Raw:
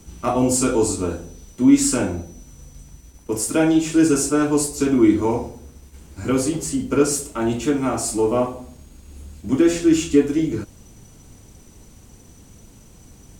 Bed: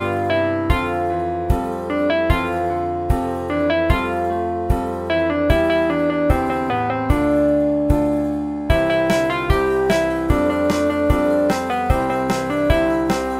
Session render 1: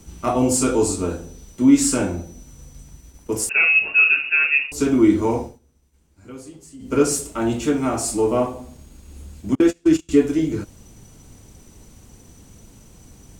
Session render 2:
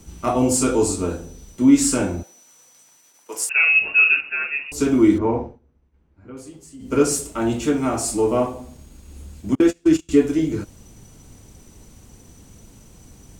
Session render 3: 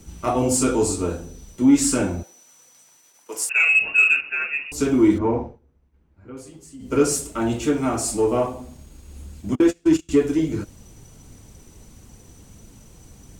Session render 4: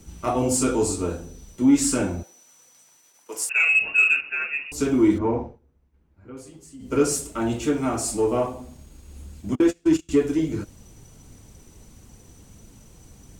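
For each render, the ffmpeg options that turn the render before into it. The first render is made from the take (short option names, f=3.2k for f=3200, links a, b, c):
-filter_complex "[0:a]asettb=1/sr,asplit=3[a][b][c];[a]atrim=end=3.494[d];[b]atrim=start=3.49:end=4.72,asetpts=PTS-STARTPTS,afade=t=in:d=0.004:c=qsin,afade=t=out:st=1.226:d=0.004:c=qsin,lowpass=f=2.5k:t=q:w=0.5098,lowpass=f=2.5k:t=q:w=0.6013,lowpass=f=2.5k:t=q:w=0.9,lowpass=f=2.5k:t=q:w=2.563,afreqshift=-2900[e];[c]atrim=start=4.716[f];[d][e]acrossfade=d=0.004:c1=hsin:c2=qsin[g];[g][f]acrossfade=d=0.004:c1=qsin:c2=hsin,asettb=1/sr,asplit=3[h][i][j];[h]atrim=end=9.554[k];[i]atrim=start=9.55:end=10.09,asetpts=PTS-STARTPTS,afade=t=in:d=0.004:c=qsin,afade=t=out:st=0.536:d=0.004:c=qsin,agate=range=-32dB:threshold=-18dB:ratio=16:release=100:detection=peak[l];[j]atrim=start=10.086[m];[k][l]acrossfade=d=0.004:c1=hsin:c2=qsin[n];[n][m]acrossfade=d=0.004:c1=qsin:c2=hsin,asplit=3[o][p][q];[o]atrim=end=5.59,asetpts=PTS-STARTPTS,afade=t=out:st=5.41:d=0.18:silence=0.125893[r];[p]atrim=start=5.59:end=6.79,asetpts=PTS-STARTPTS,volume=-18dB[s];[q]atrim=start=6.79,asetpts=PTS-STARTPTS,afade=t=in:d=0.18:silence=0.125893[t];[r][s][t]concat=n=3:v=0:a=1"
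-filter_complex "[0:a]asettb=1/sr,asplit=3[a][b][c];[a]atrim=end=2.234[d];[b]atrim=start=2.23:end=3.67,asetpts=PTS-STARTPTS,afade=t=in:d=0.004:c=qsin,afade=t=out:st=1.436:d=0.004:c=qsin,highpass=750[e];[c]atrim=start=3.666[f];[d][e]acrossfade=d=0.004:c1=hsin:c2=qsin[g];[g][f]acrossfade=d=0.004:c1=qsin:c2=hsin,asplit=3[h][i][j];[h]afade=t=out:st=4.2:d=0.02[k];[i]lowpass=1.7k,afade=t=in:st=4.2:d=0.02,afade=t=out:st=4.65:d=0.02[l];[j]afade=t=in:st=4.65:d=0.02[m];[k][l][m]amix=inputs=3:normalize=0,asettb=1/sr,asplit=3[n][o][p];[n]atrim=end=5.184[q];[o]atrim=start=5.18:end=6.37,asetpts=PTS-STARTPTS,afade=t=in:d=0.004:c=qsin,afade=t=out:st=1.186:d=0.004:c=qsin,lowpass=1.9k[r];[p]atrim=start=6.366[s];[q][r]acrossfade=d=0.004:c1=hsin:c2=qsin[t];[t][s]acrossfade=d=0.004:c1=qsin:c2=hsin"
-filter_complex "[0:a]flanger=delay=0.4:depth=2.2:regen=-72:speed=1.5:shape=triangular,asplit=2[a][b];[b]asoftclip=type=tanh:threshold=-15.5dB,volume=-5dB[c];[a][c]amix=inputs=2:normalize=0"
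-af "volume=-2dB"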